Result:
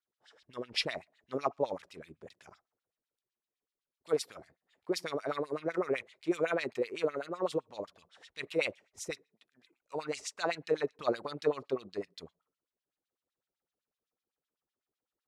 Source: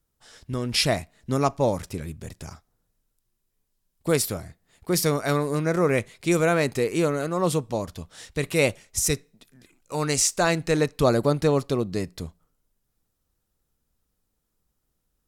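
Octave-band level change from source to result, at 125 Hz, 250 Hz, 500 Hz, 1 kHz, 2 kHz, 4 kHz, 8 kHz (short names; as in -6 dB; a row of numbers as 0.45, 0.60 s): -23.5, -13.5, -9.5, -10.5, -10.0, -10.5, -20.5 dB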